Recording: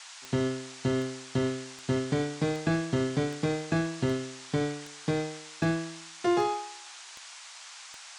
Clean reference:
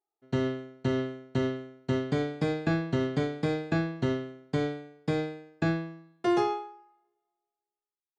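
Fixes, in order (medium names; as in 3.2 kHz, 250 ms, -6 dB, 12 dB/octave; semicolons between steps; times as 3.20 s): de-click; noise print and reduce 30 dB; inverse comb 76 ms -19 dB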